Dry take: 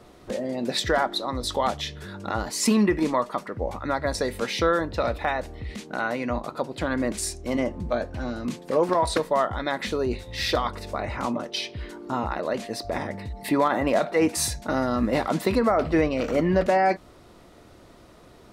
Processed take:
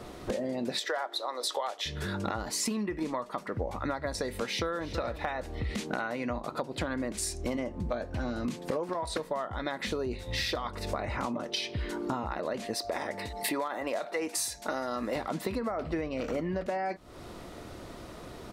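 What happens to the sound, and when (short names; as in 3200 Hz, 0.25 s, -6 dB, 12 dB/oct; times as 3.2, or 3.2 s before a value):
0.79–1.86 HPF 430 Hz 24 dB/oct
4.3–4.91 echo throw 0.33 s, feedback 25%, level -15 dB
12.74–15.16 tone controls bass -15 dB, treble +4 dB
whole clip: compressor 16:1, threshold -35 dBFS; gain +6 dB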